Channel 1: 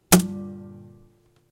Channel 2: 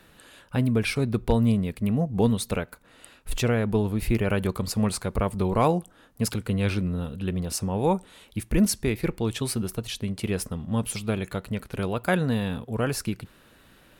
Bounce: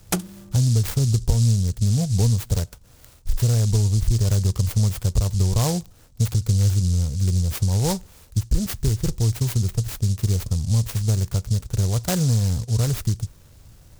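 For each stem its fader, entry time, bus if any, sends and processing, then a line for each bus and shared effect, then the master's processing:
-3.5 dB, 0.00 s, no send, auto duck -7 dB, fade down 0.25 s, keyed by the second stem
0.0 dB, 0.00 s, no send, resonant low shelf 160 Hz +13 dB, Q 1.5; noise-modulated delay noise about 6000 Hz, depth 0.16 ms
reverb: off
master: compressor 3:1, threshold -17 dBFS, peak gain reduction 9 dB

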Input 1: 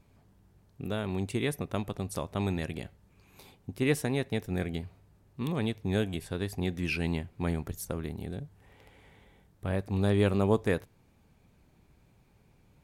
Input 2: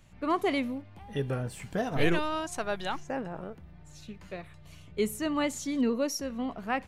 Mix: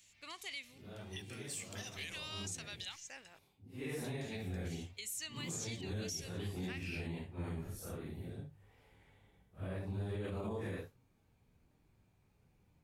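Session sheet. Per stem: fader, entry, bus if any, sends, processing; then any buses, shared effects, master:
3.6 s -18 dB -> 4.02 s -9 dB, 0.00 s, no send, phase scrambler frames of 0.2 s
-3.0 dB, 0.00 s, muted 3.39–4.04, no send, band shelf 3900 Hz +11 dB 2.4 oct; compressor, threshold -26 dBFS, peak gain reduction 9.5 dB; pre-emphasis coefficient 0.97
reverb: off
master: bell 96 Hz +4.5 dB 0.42 oct; limiter -32.5 dBFS, peak gain reduction 11 dB

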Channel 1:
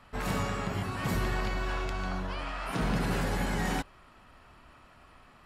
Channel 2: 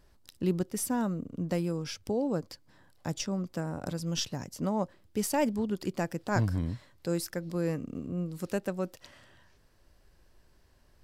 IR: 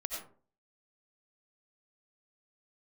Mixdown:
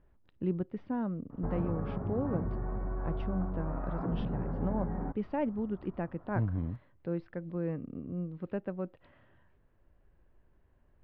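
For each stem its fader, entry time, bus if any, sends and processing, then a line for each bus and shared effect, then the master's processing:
+1.5 dB, 1.30 s, no send, Gaussian blur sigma 7.7 samples; compressor 6:1, threshold -36 dBFS, peak gain reduction 10 dB
-6.0 dB, 0.00 s, no send, Bessel low-pass 1800 Hz, order 8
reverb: off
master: low shelf 500 Hz +3.5 dB

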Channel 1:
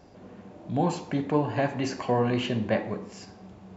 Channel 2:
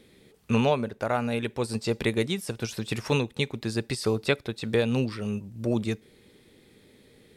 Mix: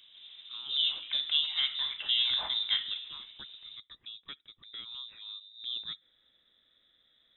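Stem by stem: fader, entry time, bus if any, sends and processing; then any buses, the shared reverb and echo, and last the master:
-4.5 dB, 0.00 s, no send, dry
4.74 s -21 dB -> 5.51 s -12 dB, 0.00 s, no send, dry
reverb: off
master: bell 2900 Hz -3 dB; inverted band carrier 3800 Hz

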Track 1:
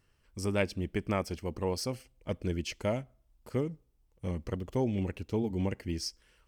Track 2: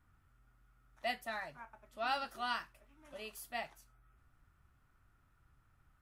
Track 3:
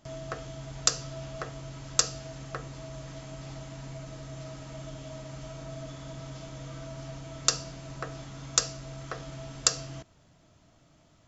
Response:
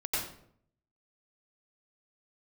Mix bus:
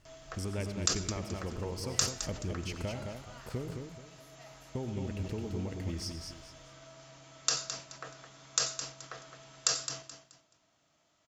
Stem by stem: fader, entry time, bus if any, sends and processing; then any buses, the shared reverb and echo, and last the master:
+1.0 dB, 0.00 s, muted 3.87–4.75, send -14 dB, echo send -4 dB, compressor 6:1, threshold -39 dBFS, peak gain reduction 14.5 dB
-18.5 dB, 0.85 s, no send, echo send -9.5 dB, sustainer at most 45 dB/s
-6.5 dB, 0.00 s, send -17 dB, echo send -9 dB, HPF 880 Hz 6 dB/oct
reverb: on, RT60 0.65 s, pre-delay 85 ms
echo: feedback echo 0.214 s, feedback 29%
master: low shelf 97 Hz +7 dB; sustainer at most 130 dB/s

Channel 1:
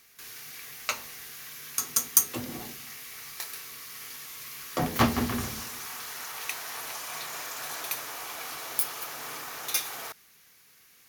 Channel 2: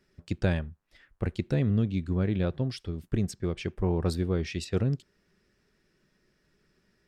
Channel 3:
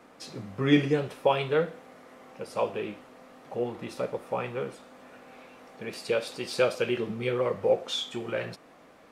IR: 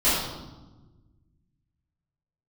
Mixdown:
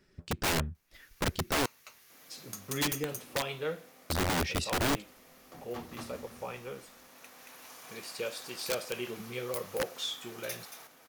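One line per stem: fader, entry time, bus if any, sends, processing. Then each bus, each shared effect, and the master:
-13.5 dB, 0.75 s, no send, echo send -9 dB, auto duck -10 dB, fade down 1.60 s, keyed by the second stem
+2.5 dB, 0.00 s, muted 1.66–4.1, no send, no echo send, dry
-10.0 dB, 2.10 s, no send, no echo send, high shelf 3400 Hz +11 dB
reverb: off
echo: echo 0.227 s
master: wrapped overs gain 23.5 dB

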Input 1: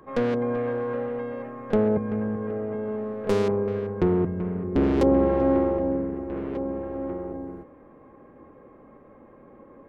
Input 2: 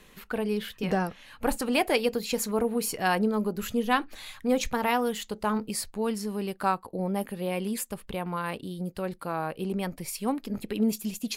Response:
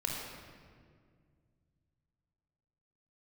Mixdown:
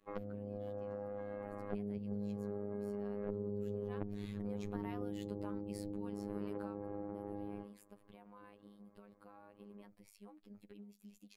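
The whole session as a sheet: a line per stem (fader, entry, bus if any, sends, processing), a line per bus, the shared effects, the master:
-2.5 dB, 0.00 s, no send, treble ducked by the level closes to 350 Hz, closed at -21.5 dBFS; expander -40 dBFS; compressor 10:1, threshold -34 dBFS, peak gain reduction 16 dB
3.63 s -22.5 dB -> 4.11 s -10 dB -> 6.56 s -10 dB -> 6.8 s -18.5 dB, 0.00 s, no send, compressor 6:1, threshold -32 dBFS, peak gain reduction 13 dB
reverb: off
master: high shelf 3000 Hz -9 dB; robotiser 102 Hz

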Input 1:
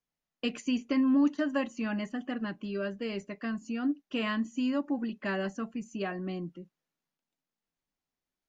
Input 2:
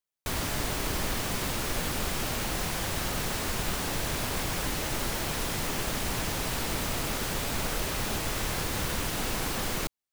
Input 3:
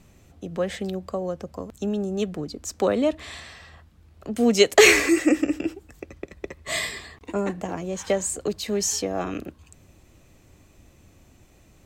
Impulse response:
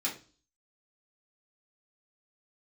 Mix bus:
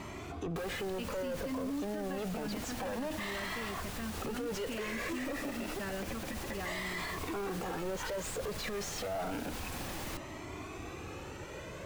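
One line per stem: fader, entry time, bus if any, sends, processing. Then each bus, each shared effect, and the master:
-3.5 dB, 0.55 s, no send, dry
-10.5 dB, 0.30 s, no send, dry
-1.0 dB, 0.00 s, no send, compressor, threshold -30 dBFS, peak gain reduction 19 dB; overdrive pedal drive 34 dB, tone 1100 Hz, clips at -14.5 dBFS; cascading flanger rising 0.29 Hz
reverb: off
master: limiter -29.5 dBFS, peak gain reduction 13 dB

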